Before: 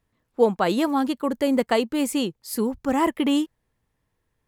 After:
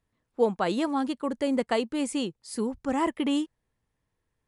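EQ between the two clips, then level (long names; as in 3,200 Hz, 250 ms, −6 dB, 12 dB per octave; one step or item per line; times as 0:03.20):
linear-phase brick-wall low-pass 11,000 Hz
−5.0 dB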